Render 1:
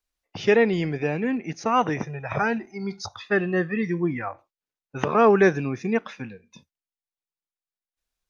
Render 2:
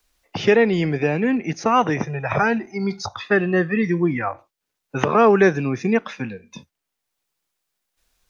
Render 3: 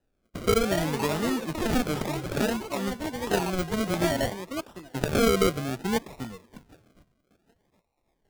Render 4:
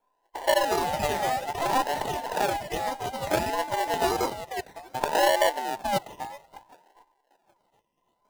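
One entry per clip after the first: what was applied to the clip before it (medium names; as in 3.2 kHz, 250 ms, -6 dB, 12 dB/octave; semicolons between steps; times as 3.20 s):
three bands compressed up and down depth 40%; trim +4.5 dB
feedback echo behind a high-pass 772 ms, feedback 31%, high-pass 2 kHz, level -14 dB; decimation with a swept rate 39×, swing 60% 0.6 Hz; ever faster or slower copies 377 ms, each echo +6 st, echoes 2, each echo -6 dB; trim -8 dB
every band turned upside down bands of 1 kHz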